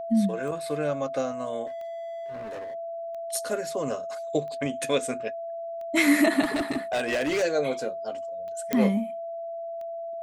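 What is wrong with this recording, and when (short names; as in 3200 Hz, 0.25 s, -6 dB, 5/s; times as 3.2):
tick 45 rpm
tone 670 Hz -32 dBFS
1.66–2.75 clipped -33.5 dBFS
6.43–7.44 clipped -22.5 dBFS
8.73 pop -11 dBFS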